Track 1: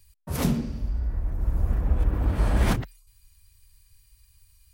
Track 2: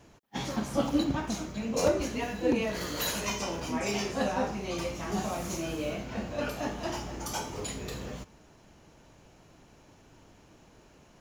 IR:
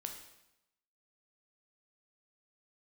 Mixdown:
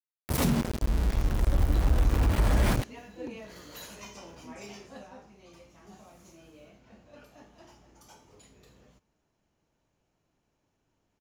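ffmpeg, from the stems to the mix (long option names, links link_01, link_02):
-filter_complex "[0:a]aeval=exprs='val(0)*gte(abs(val(0)),0.0376)':channel_layout=same,volume=1.5dB[link_01];[1:a]adelay=750,volume=-13dB,afade=type=out:start_time=4.62:duration=0.56:silence=0.446684[link_02];[link_01][link_02]amix=inputs=2:normalize=0,alimiter=limit=-15dB:level=0:latency=1:release=58"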